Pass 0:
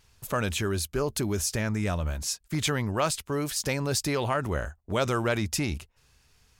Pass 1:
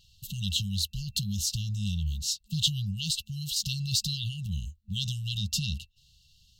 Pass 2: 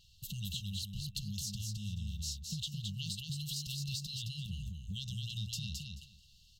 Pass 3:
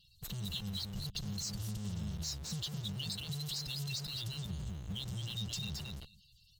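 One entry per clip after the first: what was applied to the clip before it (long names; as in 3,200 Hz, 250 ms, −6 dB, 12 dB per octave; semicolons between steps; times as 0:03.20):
brick-wall band-stop 210–2,700 Hz; thirty-one-band graphic EQ 2,500 Hz +11 dB, 4,000 Hz +10 dB, 10,000 Hz −10 dB
downward compressor 6 to 1, threshold −35 dBFS, peak gain reduction 14.5 dB; on a send: repeating echo 217 ms, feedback 17%, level −4 dB; on the sum: level −3 dB
spectral magnitudes quantised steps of 30 dB; in parallel at −7 dB: comparator with hysteresis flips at −47 dBFS; on the sum: level −1.5 dB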